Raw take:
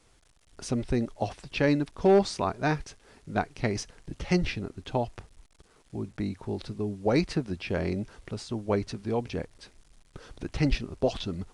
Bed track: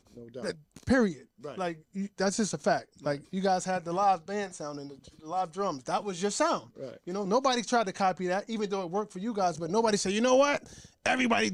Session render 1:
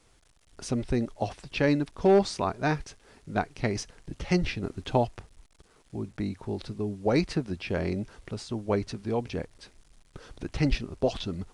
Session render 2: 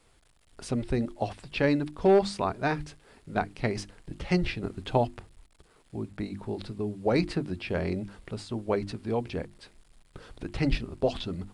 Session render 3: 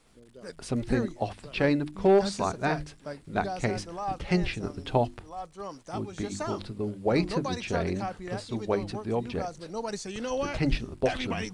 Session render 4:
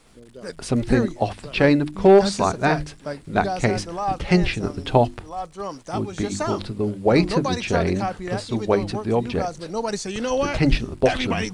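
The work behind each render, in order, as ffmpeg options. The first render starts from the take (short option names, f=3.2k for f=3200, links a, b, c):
-filter_complex "[0:a]asplit=3[a][b][c];[a]atrim=end=4.632[d];[b]atrim=start=4.628:end=5.072,asetpts=PTS-STARTPTS,volume=4dB[e];[c]atrim=start=5.068[f];[d][e]acrossfade=d=0.004:c1=hsin:c2=hsin[g];[g][f]acrossfade=d=0.004:c1=hsin:c2=hsin"
-af "equalizer=f=6k:t=o:w=0.36:g=-7.5,bandreject=f=50:t=h:w=6,bandreject=f=100:t=h:w=6,bandreject=f=150:t=h:w=6,bandreject=f=200:t=h:w=6,bandreject=f=250:t=h:w=6,bandreject=f=300:t=h:w=6,bandreject=f=350:t=h:w=6"
-filter_complex "[1:a]volume=-8dB[a];[0:a][a]amix=inputs=2:normalize=0"
-af "volume=8dB"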